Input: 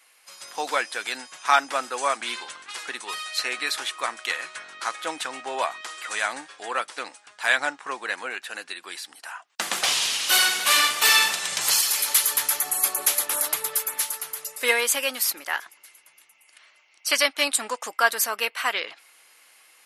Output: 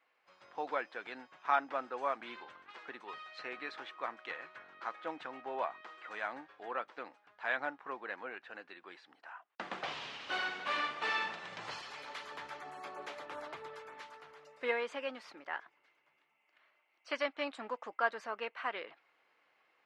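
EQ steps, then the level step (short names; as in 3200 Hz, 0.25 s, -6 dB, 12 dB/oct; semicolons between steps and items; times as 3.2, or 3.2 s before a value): tape spacing loss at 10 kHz 45 dB; -6.0 dB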